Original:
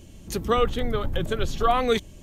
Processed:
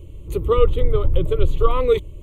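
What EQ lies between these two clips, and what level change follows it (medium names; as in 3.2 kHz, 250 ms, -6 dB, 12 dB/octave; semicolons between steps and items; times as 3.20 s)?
tilt shelf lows +7.5 dB, about 670 Hz; static phaser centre 1.1 kHz, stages 8; +4.0 dB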